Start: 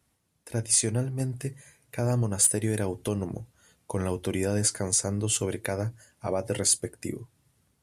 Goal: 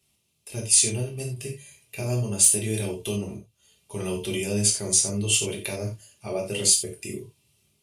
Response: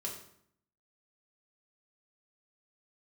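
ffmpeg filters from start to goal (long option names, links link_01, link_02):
-filter_complex "[0:a]highshelf=frequency=2100:width_type=q:width=3:gain=7.5,asettb=1/sr,asplit=3[link_01][link_02][link_03];[link_01]atrim=end=3.354[link_04];[link_02]atrim=start=3.35:end=3.91,asetpts=PTS-STARTPTS,afade=type=in:duration=0.004:curve=qsin,afade=type=out:start_time=0.556:duration=0.004:curve=qsin,acompressor=threshold=-52dB:ratio=4[link_05];[link_03]atrim=start=3.906[link_06];[link_04][link_05]acrossfade=duration=0.004:curve1=hsin:curve2=qsin[link_07];[link_07][link_06]acrossfade=duration=0.004:curve1=qsin:curve2=hsin[link_08];[1:a]atrim=start_sample=2205,atrim=end_sample=4410[link_09];[link_08][link_09]afir=irnorm=-1:irlink=0,volume=-2dB"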